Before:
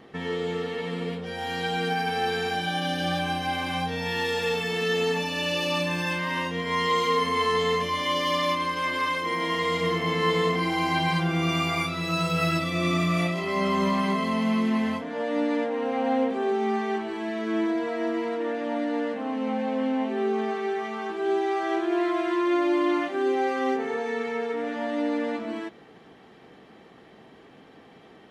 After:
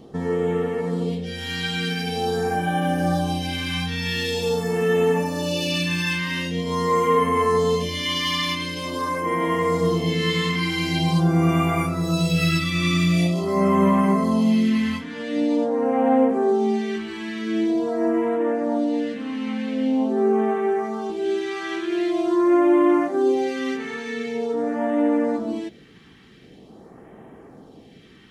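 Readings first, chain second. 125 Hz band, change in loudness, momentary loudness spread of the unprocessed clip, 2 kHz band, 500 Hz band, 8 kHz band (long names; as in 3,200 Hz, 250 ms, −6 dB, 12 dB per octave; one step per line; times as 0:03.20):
+7.5 dB, +4.0 dB, 6 LU, +0.5 dB, +4.5 dB, +5.5 dB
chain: low-shelf EQ 67 Hz +6 dB
all-pass phaser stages 2, 0.45 Hz, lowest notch 610–4,100 Hz
level +6 dB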